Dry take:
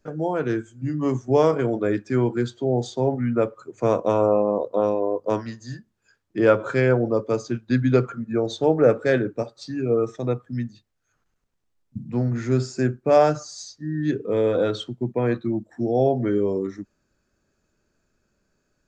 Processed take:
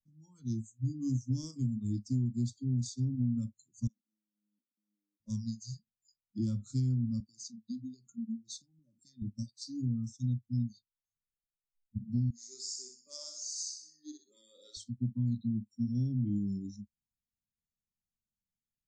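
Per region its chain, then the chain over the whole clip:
3.87–5.20 s: inverted gate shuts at -15 dBFS, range -27 dB + compressor with a negative ratio -50 dBFS + steep high-pass 210 Hz
7.20–9.22 s: high-pass 140 Hz + compression 8:1, threshold -29 dBFS
12.30–14.77 s: high-pass 390 Hz 24 dB/octave + feedback delay 63 ms, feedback 49%, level -5 dB
whole clip: inverse Chebyshev band-stop 420–2800 Hz, stop band 40 dB; spectral noise reduction 25 dB; compression, threshold -27 dBFS

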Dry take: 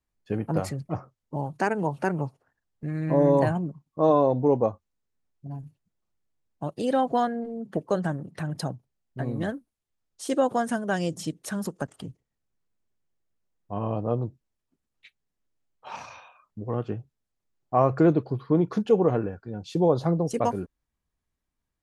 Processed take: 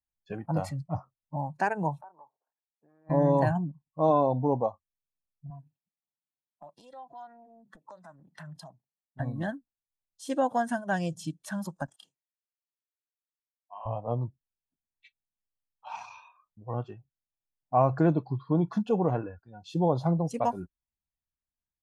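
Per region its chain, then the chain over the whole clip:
2.01–3.10 s: Chebyshev band-pass 420–1100 Hz + compression, threshold -41 dBFS
5.50–9.20 s: high-pass 170 Hz + compression 20:1, threshold -36 dBFS + loudspeaker Doppler distortion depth 0.26 ms
11.96–13.86 s: Bessel high-pass 1.3 kHz + doubling 29 ms -5 dB
whole clip: spectral noise reduction 14 dB; treble shelf 3.8 kHz -6.5 dB; comb 1.2 ms, depth 45%; trim -2.5 dB

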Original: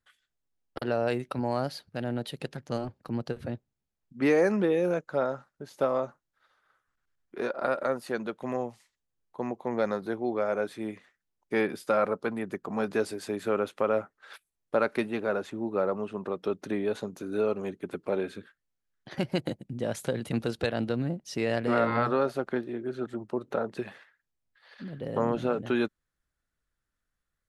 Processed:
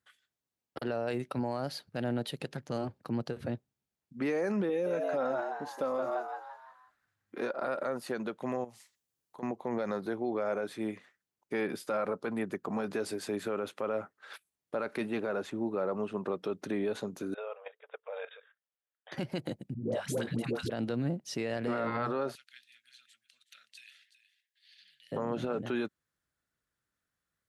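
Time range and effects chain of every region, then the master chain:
4.69–7.42 s: comb 3.8 ms, depth 49% + frequency-shifting echo 169 ms, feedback 45%, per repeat +100 Hz, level -8 dB
8.64–9.43 s: treble shelf 4.2 kHz +9 dB + compression 2.5:1, threshold -48 dBFS
17.34–19.12 s: brick-wall FIR band-pass 440–3800 Hz + level held to a coarse grid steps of 13 dB
19.74–20.70 s: hum notches 50/100/150/200/250 Hz + phase dispersion highs, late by 134 ms, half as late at 510 Hz
22.35–25.12 s: inverse Chebyshev high-pass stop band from 990 Hz, stop band 50 dB + delay 371 ms -13.5 dB
whole clip: high-pass 90 Hz; peak limiter -24 dBFS

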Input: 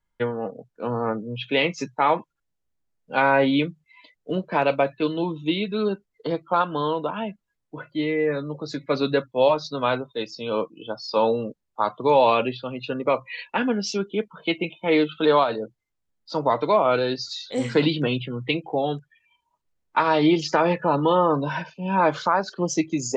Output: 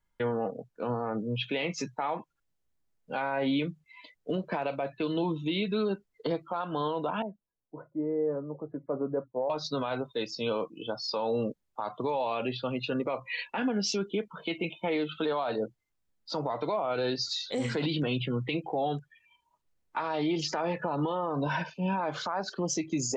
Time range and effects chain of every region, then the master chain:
7.22–9.50 s: Bessel low-pass 660 Hz, order 6 + bass shelf 350 Hz -10.5 dB
whole clip: dynamic bell 740 Hz, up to +6 dB, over -37 dBFS, Q 4.7; compression, threshold -21 dBFS; peak limiter -21.5 dBFS

